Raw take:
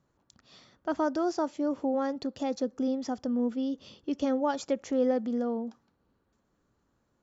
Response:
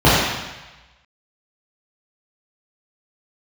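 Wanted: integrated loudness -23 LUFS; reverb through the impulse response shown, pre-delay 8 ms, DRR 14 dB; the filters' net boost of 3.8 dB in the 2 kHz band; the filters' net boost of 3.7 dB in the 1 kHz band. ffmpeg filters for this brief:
-filter_complex "[0:a]equalizer=f=1000:t=o:g=4,equalizer=f=2000:t=o:g=3.5,asplit=2[s0][s1];[1:a]atrim=start_sample=2205,adelay=8[s2];[s1][s2]afir=irnorm=-1:irlink=0,volume=0.0075[s3];[s0][s3]amix=inputs=2:normalize=0,volume=2.11"

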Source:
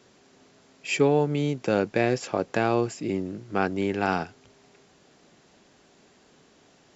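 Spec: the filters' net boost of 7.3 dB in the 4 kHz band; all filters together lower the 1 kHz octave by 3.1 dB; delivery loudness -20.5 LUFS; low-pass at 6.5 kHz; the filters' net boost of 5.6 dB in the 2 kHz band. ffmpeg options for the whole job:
-af "lowpass=6500,equalizer=f=1000:t=o:g=-7,equalizer=f=2000:t=o:g=7.5,equalizer=f=4000:t=o:g=8,volume=1.68"

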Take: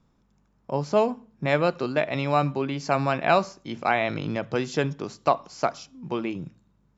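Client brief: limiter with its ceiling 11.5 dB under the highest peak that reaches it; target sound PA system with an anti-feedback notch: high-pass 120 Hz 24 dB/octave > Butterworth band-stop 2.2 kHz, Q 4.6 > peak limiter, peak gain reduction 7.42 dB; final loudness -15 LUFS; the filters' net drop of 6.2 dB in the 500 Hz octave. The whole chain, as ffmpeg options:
-af "equalizer=f=500:t=o:g=-8.5,alimiter=limit=0.106:level=0:latency=1,highpass=f=120:w=0.5412,highpass=f=120:w=1.3066,asuperstop=centerf=2200:order=8:qfactor=4.6,volume=11.2,alimiter=limit=0.631:level=0:latency=1"

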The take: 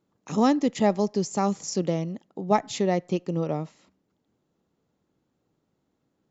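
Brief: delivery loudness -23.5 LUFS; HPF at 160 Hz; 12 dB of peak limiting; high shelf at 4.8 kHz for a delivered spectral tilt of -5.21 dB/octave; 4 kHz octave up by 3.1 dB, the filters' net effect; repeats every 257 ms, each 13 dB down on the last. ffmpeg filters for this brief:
-af "highpass=160,equalizer=f=4000:t=o:g=9,highshelf=f=4800:g=-9,alimiter=limit=0.106:level=0:latency=1,aecho=1:1:257|514|771:0.224|0.0493|0.0108,volume=2.37"

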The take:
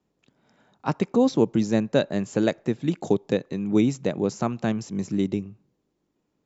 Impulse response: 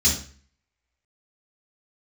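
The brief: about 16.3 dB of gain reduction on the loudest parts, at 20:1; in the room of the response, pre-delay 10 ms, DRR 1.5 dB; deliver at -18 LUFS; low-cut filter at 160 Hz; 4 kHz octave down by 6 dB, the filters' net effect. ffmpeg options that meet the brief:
-filter_complex "[0:a]highpass=160,equalizer=f=4000:t=o:g=-7,acompressor=threshold=0.0282:ratio=20,asplit=2[s0][s1];[1:a]atrim=start_sample=2205,adelay=10[s2];[s1][s2]afir=irnorm=-1:irlink=0,volume=0.2[s3];[s0][s3]amix=inputs=2:normalize=0,volume=3.76"

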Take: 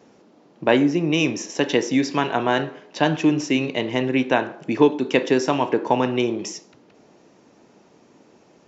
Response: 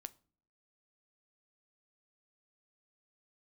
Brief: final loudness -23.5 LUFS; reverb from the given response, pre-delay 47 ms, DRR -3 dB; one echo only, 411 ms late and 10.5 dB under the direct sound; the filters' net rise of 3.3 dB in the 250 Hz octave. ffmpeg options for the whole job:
-filter_complex "[0:a]equalizer=f=250:t=o:g=4,aecho=1:1:411:0.299,asplit=2[s0][s1];[1:a]atrim=start_sample=2205,adelay=47[s2];[s1][s2]afir=irnorm=-1:irlink=0,volume=2.51[s3];[s0][s3]amix=inputs=2:normalize=0,volume=0.335"

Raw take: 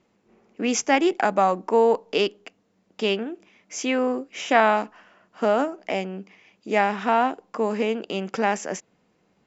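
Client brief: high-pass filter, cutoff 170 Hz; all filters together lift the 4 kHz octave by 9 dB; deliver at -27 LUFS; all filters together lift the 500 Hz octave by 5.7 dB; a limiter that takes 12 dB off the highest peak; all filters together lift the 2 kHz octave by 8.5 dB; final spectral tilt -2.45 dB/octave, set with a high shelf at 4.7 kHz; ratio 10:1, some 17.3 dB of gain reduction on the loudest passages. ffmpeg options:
-af "highpass=170,equalizer=f=500:t=o:g=6.5,equalizer=f=2000:t=o:g=7.5,equalizer=f=4000:t=o:g=5.5,highshelf=f=4700:g=8,acompressor=threshold=0.0501:ratio=10,volume=2.37,alimiter=limit=0.158:level=0:latency=1"

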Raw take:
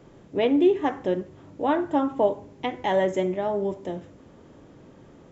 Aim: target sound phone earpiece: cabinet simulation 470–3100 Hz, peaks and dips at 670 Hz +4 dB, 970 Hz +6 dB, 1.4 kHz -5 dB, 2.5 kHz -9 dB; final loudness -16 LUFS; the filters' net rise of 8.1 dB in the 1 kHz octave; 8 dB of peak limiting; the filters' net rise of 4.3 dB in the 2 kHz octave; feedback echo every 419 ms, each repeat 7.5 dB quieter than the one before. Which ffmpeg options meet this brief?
-af "equalizer=f=1000:t=o:g=5,equalizer=f=2000:t=o:g=7,alimiter=limit=0.168:level=0:latency=1,highpass=470,equalizer=f=670:t=q:w=4:g=4,equalizer=f=970:t=q:w=4:g=6,equalizer=f=1400:t=q:w=4:g=-5,equalizer=f=2500:t=q:w=4:g=-9,lowpass=f=3100:w=0.5412,lowpass=f=3100:w=1.3066,aecho=1:1:419|838|1257|1676|2095:0.422|0.177|0.0744|0.0312|0.0131,volume=3.35"

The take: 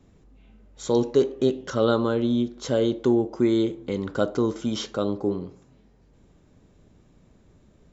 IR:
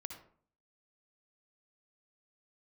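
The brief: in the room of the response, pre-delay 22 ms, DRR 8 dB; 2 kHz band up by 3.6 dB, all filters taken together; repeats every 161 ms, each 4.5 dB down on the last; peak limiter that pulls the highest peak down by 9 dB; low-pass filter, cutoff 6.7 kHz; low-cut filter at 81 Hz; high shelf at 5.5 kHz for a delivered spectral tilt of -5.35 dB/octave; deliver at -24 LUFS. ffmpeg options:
-filter_complex "[0:a]highpass=81,lowpass=6700,equalizer=f=2000:t=o:g=6,highshelf=f=5500:g=-3.5,alimiter=limit=0.168:level=0:latency=1,aecho=1:1:161|322|483|644|805|966|1127|1288|1449:0.596|0.357|0.214|0.129|0.0772|0.0463|0.0278|0.0167|0.01,asplit=2[s0][s1];[1:a]atrim=start_sample=2205,adelay=22[s2];[s1][s2]afir=irnorm=-1:irlink=0,volume=0.562[s3];[s0][s3]amix=inputs=2:normalize=0,volume=1.12"

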